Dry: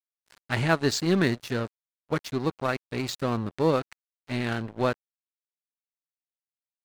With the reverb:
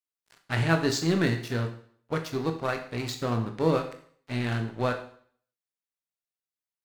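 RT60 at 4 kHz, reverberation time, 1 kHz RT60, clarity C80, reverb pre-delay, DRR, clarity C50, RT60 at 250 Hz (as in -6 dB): 0.55 s, 0.55 s, 0.55 s, 13.5 dB, 18 ms, 4.5 dB, 9.5 dB, 0.55 s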